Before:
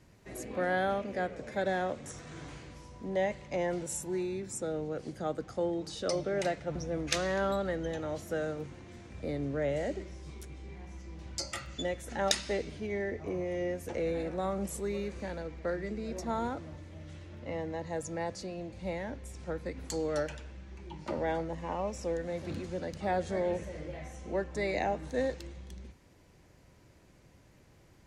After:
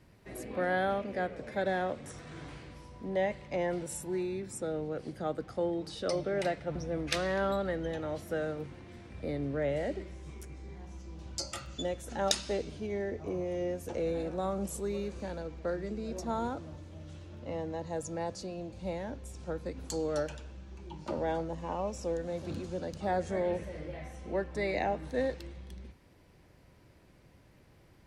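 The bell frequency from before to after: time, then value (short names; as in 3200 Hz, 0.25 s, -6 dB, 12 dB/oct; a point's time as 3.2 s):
bell -8 dB 0.46 oct
10 s 6700 Hz
10.93 s 2000 Hz
23.04 s 2000 Hz
23.47 s 6800 Hz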